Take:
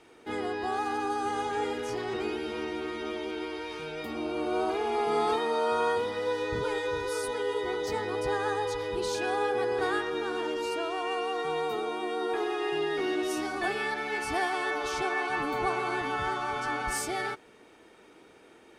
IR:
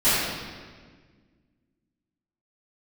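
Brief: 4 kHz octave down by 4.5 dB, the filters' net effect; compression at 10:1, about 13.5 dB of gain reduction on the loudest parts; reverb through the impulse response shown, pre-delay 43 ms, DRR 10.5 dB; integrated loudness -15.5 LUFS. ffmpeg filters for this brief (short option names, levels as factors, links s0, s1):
-filter_complex "[0:a]equalizer=f=4000:t=o:g=-6,acompressor=threshold=0.0126:ratio=10,asplit=2[s0][s1];[1:a]atrim=start_sample=2205,adelay=43[s2];[s1][s2]afir=irnorm=-1:irlink=0,volume=0.0335[s3];[s0][s3]amix=inputs=2:normalize=0,volume=18.8"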